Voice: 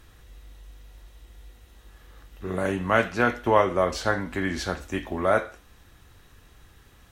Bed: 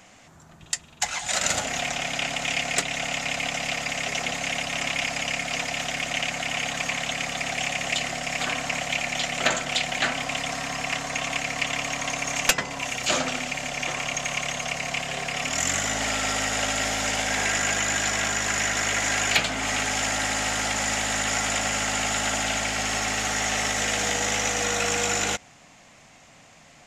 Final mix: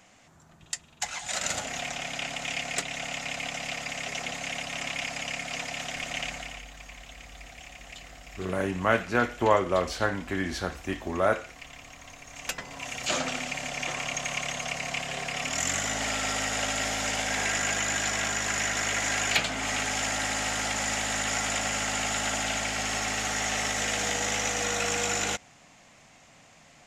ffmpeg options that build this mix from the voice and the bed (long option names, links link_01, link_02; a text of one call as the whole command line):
ffmpeg -i stem1.wav -i stem2.wav -filter_complex "[0:a]adelay=5950,volume=-2.5dB[link_01];[1:a]volume=9.5dB,afade=type=out:start_time=6.25:duration=0.39:silence=0.223872,afade=type=in:start_time=12.3:duration=0.96:silence=0.16788[link_02];[link_01][link_02]amix=inputs=2:normalize=0" out.wav